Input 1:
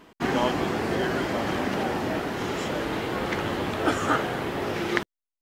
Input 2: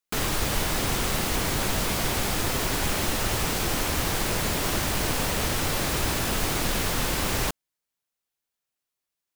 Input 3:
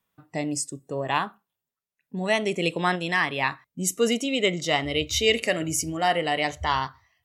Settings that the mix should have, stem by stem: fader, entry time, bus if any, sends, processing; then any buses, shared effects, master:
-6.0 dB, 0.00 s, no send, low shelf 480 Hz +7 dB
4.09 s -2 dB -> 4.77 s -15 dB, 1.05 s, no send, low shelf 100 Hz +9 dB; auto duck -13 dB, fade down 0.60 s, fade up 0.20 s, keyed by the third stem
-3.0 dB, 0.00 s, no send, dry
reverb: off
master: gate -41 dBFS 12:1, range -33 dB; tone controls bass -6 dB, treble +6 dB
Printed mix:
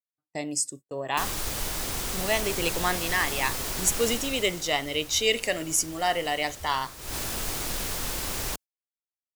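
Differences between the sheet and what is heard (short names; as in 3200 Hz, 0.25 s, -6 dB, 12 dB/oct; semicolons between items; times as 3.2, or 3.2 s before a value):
stem 1: muted; stem 2 -2.0 dB -> +5.5 dB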